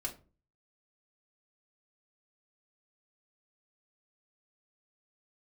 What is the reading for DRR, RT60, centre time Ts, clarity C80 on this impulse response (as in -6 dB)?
-2.0 dB, 0.35 s, 12 ms, 19.0 dB